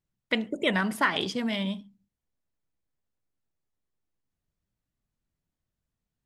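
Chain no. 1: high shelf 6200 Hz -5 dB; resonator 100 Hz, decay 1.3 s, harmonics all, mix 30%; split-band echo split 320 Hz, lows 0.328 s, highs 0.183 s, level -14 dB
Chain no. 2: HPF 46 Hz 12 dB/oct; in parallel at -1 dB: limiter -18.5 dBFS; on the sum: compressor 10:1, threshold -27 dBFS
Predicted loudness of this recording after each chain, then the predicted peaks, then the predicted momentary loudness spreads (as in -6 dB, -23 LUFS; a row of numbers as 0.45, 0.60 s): -31.0, -32.0 LUFS; -13.0, -15.0 dBFS; 19, 5 LU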